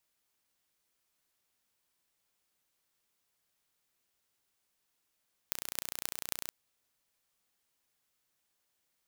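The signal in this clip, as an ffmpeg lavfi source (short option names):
-f lavfi -i "aevalsrc='0.596*eq(mod(n,1475),0)*(0.5+0.5*eq(mod(n,11800),0))':d=1:s=44100"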